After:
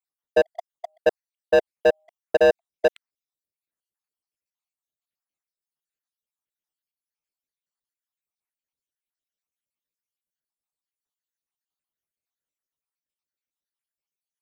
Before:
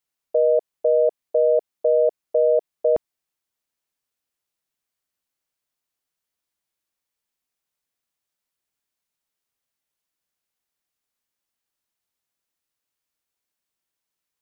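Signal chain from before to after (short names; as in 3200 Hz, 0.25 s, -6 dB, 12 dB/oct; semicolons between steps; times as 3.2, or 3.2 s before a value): random spectral dropouts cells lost 72%; sample leveller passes 3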